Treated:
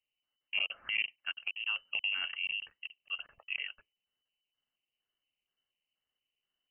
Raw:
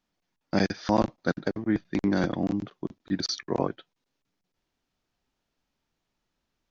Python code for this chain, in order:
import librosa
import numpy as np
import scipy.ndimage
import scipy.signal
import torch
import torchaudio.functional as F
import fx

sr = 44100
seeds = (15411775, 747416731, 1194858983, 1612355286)

y = fx.filter_lfo_notch(x, sr, shape='square', hz=2.1, low_hz=520.0, high_hz=1500.0, q=0.82)
y = fx.freq_invert(y, sr, carrier_hz=3000)
y = fx.band_squash(y, sr, depth_pct=70, at=(1.6, 2.27))
y = y * librosa.db_to_amplitude(-8.5)